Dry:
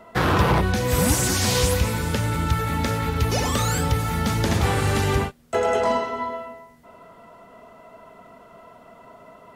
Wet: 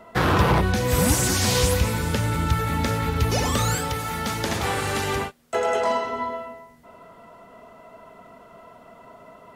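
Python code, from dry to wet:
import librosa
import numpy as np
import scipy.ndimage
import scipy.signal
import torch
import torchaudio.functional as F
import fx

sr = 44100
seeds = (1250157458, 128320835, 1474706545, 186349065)

y = fx.low_shelf(x, sr, hz=240.0, db=-11.0, at=(3.75, 6.05))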